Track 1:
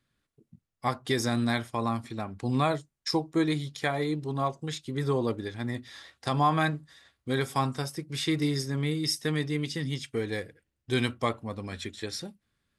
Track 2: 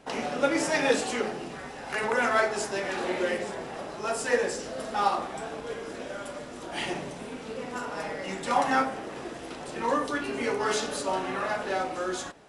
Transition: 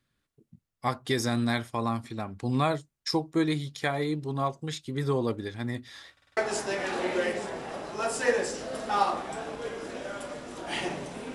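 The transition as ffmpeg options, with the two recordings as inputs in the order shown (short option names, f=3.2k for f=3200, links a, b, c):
-filter_complex "[0:a]apad=whole_dur=11.34,atrim=end=11.34,asplit=5[a][b][c][d][e];[a]atrim=end=6.172[f];[b]atrim=start=6.118:end=6.172[g];[c]atrim=start=6.118:end=6.172[h];[d]atrim=start=6.118:end=6.172[i];[e]atrim=start=6.118:end=6.172[j];[1:a]atrim=start=2.418:end=7.39[k];[f][g]acrossfade=d=0.004:c1=hsin:c2=hsin[l];[l][h]acrossfade=d=0.004:c1=hsin:c2=hsin[m];[m][i]acrossfade=d=0.004:c1=hsin:c2=hsin[n];[n][j]acrossfade=d=0.004:c1=hsin:c2=hsin[o];[o][k]acrossfade=d=0.004:c1=hsin:c2=hsin"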